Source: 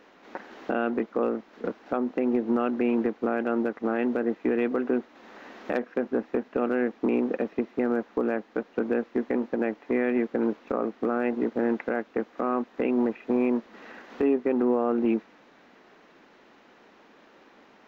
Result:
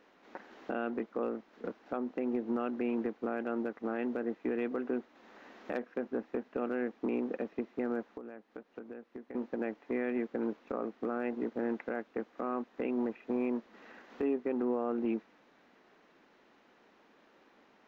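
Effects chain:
0:08.05–0:09.35: downward compressor 5 to 1, threshold −35 dBFS, peak gain reduction 13 dB
level −8.5 dB

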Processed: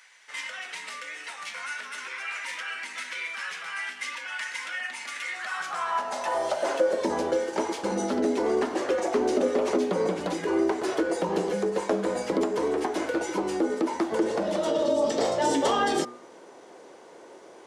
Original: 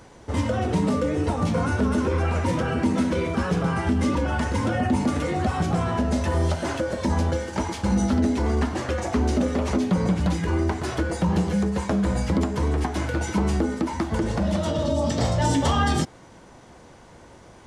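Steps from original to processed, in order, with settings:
high-pass filter sweep 2,000 Hz → 400 Hz, 0:05.24–0:07.00
0:13.22–0:13.70: notch comb filter 220 Hz
hum removal 121 Hz, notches 16
level −2 dB

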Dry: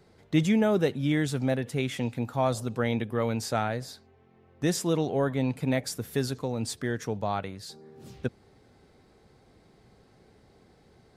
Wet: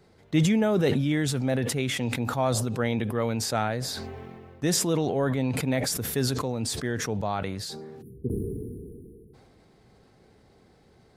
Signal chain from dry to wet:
time-frequency box erased 0:08.02–0:09.34, 480–9,400 Hz
level that may fall only so fast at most 25 dB per second

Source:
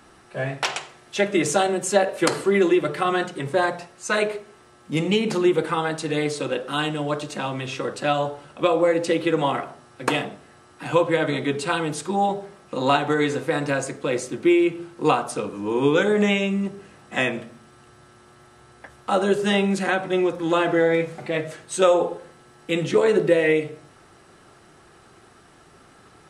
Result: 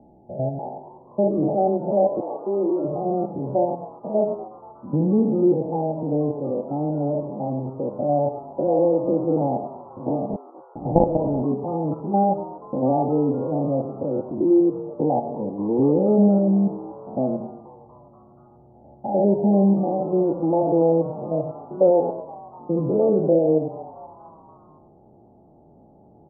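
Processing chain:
spectrum averaged block by block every 100 ms
0:02.20–0:02.83: high-pass filter 680 Hz → 320 Hz 12 dB per octave
0:10.29–0:11.42: log-companded quantiser 2 bits
Chebyshev low-pass with heavy ripple 870 Hz, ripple 6 dB
echo with shifted repeats 240 ms, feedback 55%, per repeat +120 Hz, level −19 dB
level +6.5 dB

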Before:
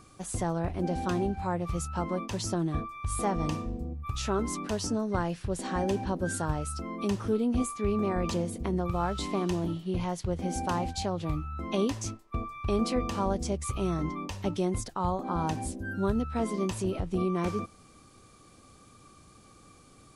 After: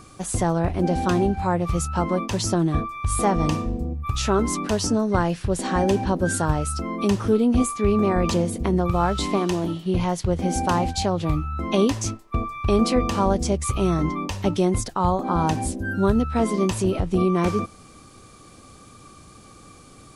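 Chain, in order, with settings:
0:09.37–0:09.86: low-shelf EQ 160 Hz −9 dB
level +8.5 dB

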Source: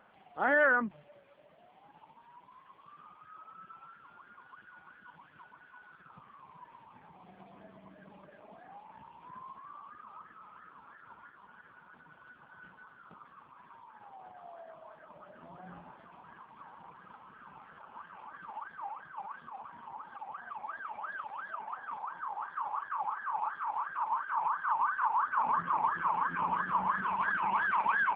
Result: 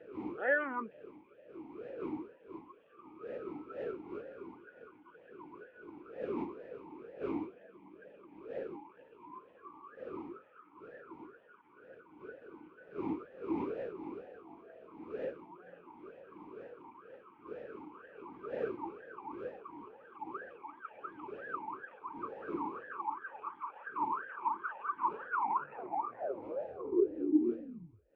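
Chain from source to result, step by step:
turntable brake at the end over 2.95 s
wind on the microphone 500 Hz −44 dBFS
formant filter swept between two vowels e-u 2.1 Hz
level +8.5 dB

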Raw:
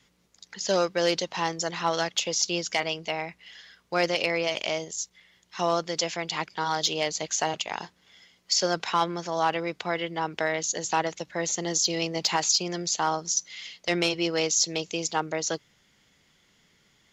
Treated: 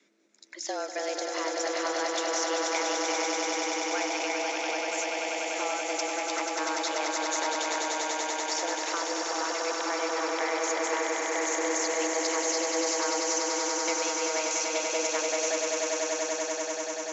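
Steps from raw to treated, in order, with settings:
downward compressor, threshold −26 dBFS, peak gain reduction 7.5 dB
frequency shifter +150 Hz
loudspeaker in its box 190–6,800 Hz, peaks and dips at 740 Hz −6 dB, 1,100 Hz −7 dB, 3,100 Hz −10 dB, 4,700 Hz −7 dB
echo that builds up and dies away 97 ms, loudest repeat 8, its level −6 dB

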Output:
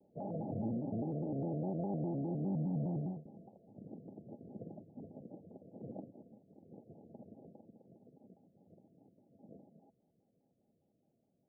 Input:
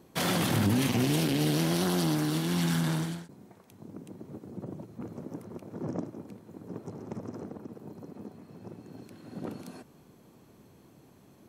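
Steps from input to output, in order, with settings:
source passing by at 0:02.87, 7 m/s, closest 6.5 metres
low-shelf EQ 400 Hz −10 dB
downward compressor, threshold −36 dBFS, peak gain reduction 6 dB
Chebyshev low-pass with heavy ripple 770 Hz, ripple 6 dB
pitch modulation by a square or saw wave square 4.9 Hz, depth 160 cents
level +7.5 dB

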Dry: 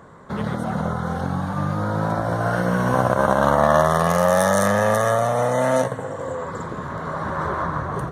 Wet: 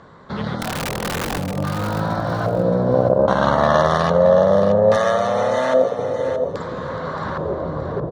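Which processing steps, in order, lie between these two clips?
auto-filter low-pass square 0.61 Hz 520–4,400 Hz
0:00.60–0:01.39: wrap-around overflow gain 18.5 dB
0:04.96–0:05.99: high-pass filter 260 Hz 12 dB per octave
repeating echo 623 ms, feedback 26%, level −9 dB

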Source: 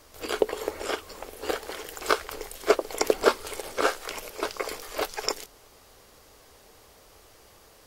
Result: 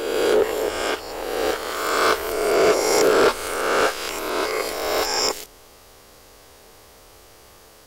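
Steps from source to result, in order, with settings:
peak hold with a rise ahead of every peak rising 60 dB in 1.50 s
soft clipping −13 dBFS, distortion −13 dB
level +3 dB

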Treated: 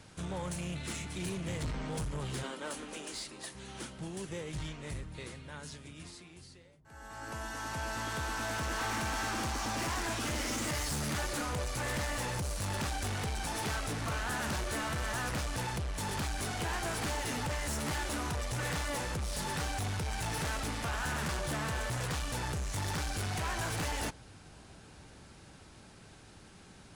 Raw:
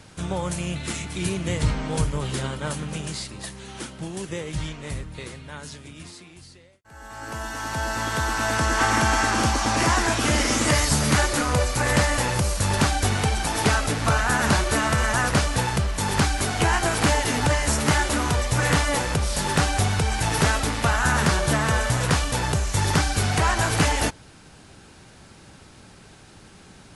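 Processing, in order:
0:02.43–0:03.55: Butterworth high-pass 230 Hz 48 dB per octave
soft clipping −25 dBFS, distortion −8 dB
delay with a low-pass on its return 1,121 ms, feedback 53%, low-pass 680 Hz, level −23 dB
level −7 dB

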